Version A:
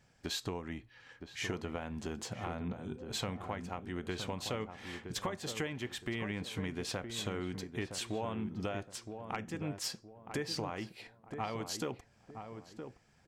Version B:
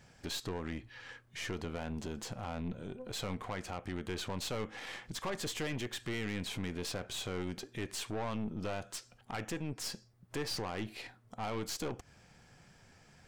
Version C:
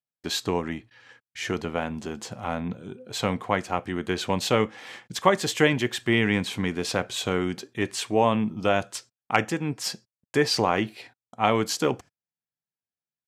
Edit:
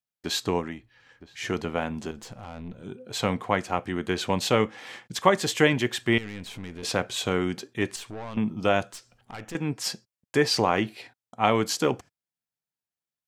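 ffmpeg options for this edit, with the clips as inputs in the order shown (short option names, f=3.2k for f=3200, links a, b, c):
-filter_complex "[1:a]asplit=4[a][b][c][d];[2:a]asplit=6[e][f][g][h][i][j];[e]atrim=end=0.82[k];[0:a]atrim=start=0.58:end=1.53[l];[f]atrim=start=1.29:end=2.112[m];[a]atrim=start=2.108:end=2.832[n];[g]atrim=start=2.828:end=6.182[o];[b]atrim=start=6.178:end=6.832[p];[h]atrim=start=6.828:end=7.962[q];[c]atrim=start=7.958:end=8.372[r];[i]atrim=start=8.368:end=8.932[s];[d]atrim=start=8.928:end=9.552[t];[j]atrim=start=9.548[u];[k][l]acrossfade=d=0.24:c1=tri:c2=tri[v];[v][m]acrossfade=d=0.24:c1=tri:c2=tri[w];[w][n]acrossfade=d=0.004:c1=hsin:c2=hsin[x];[x][o]acrossfade=d=0.004:c1=hsin:c2=hsin[y];[y][p]acrossfade=d=0.004:c1=hsin:c2=hsin[z];[z][q]acrossfade=d=0.004:c1=hsin:c2=hsin[aa];[aa][r]acrossfade=d=0.004:c1=hsin:c2=hsin[ab];[ab][s]acrossfade=d=0.004:c1=hsin:c2=hsin[ac];[ac][t]acrossfade=d=0.004:c1=hsin:c2=hsin[ad];[ad][u]acrossfade=d=0.004:c1=hsin:c2=hsin"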